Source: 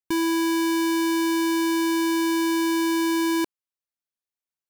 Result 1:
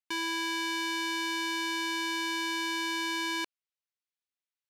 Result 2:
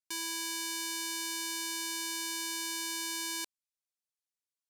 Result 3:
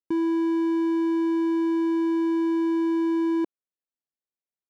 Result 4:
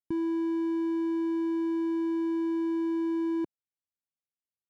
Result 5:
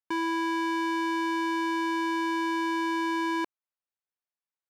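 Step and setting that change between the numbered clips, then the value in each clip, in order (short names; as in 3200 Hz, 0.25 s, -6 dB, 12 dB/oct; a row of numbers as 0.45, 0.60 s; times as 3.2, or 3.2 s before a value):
band-pass, frequency: 2800, 7300, 320, 130, 1100 Hz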